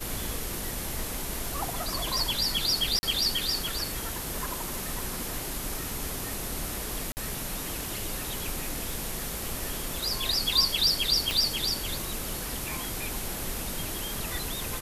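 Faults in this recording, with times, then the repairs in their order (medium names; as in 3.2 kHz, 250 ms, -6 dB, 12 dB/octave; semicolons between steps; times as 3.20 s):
crackle 26 per s -35 dBFS
2.99–3.03 s: dropout 40 ms
7.12–7.17 s: dropout 49 ms
11.31 s: pop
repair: de-click; interpolate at 2.99 s, 40 ms; interpolate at 7.12 s, 49 ms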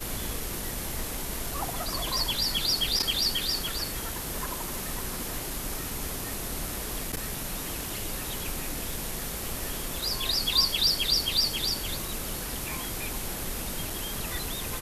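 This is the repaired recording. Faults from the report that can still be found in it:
nothing left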